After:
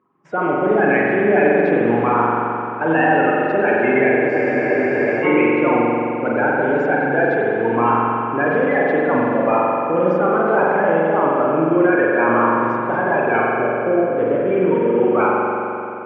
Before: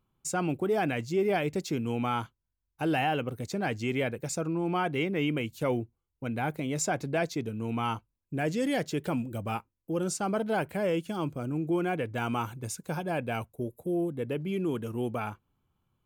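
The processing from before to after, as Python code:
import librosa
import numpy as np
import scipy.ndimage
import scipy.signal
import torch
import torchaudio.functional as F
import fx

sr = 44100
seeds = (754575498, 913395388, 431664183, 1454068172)

p1 = fx.spec_quant(x, sr, step_db=30)
p2 = fx.cabinet(p1, sr, low_hz=290.0, low_slope=12, high_hz=2100.0, hz=(610.0, 990.0, 1700.0), db=(4, 5, 4))
p3 = fx.over_compress(p2, sr, threshold_db=-33.0, ratio=-1.0)
p4 = p2 + F.gain(torch.from_numpy(p3), 1.0).numpy()
p5 = fx.notch(p4, sr, hz=640.0, q=21.0)
p6 = fx.rev_spring(p5, sr, rt60_s=3.0, pass_ms=(43,), chirp_ms=75, drr_db=-4.5)
p7 = fx.spec_freeze(p6, sr, seeds[0], at_s=4.31, hold_s=0.92)
y = F.gain(torch.from_numpy(p7), 5.0).numpy()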